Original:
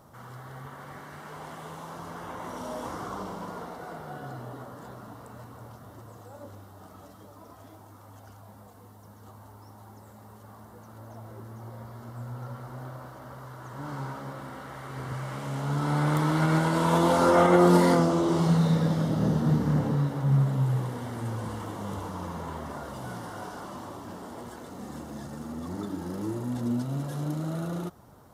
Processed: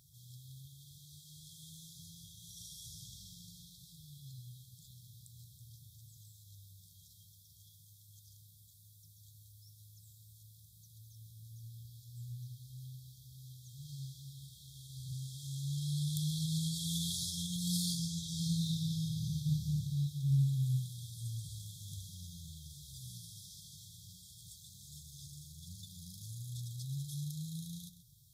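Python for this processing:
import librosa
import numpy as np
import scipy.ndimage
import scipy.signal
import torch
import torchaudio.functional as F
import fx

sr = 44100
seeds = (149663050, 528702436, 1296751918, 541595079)

p1 = fx.brickwall_bandstop(x, sr, low_hz=170.0, high_hz=3200.0)
p2 = fx.low_shelf(p1, sr, hz=280.0, db=-10.0)
p3 = p2 + fx.echo_single(p2, sr, ms=131, db=-13.5, dry=0)
y = p3 * 10.0 ** (1.0 / 20.0)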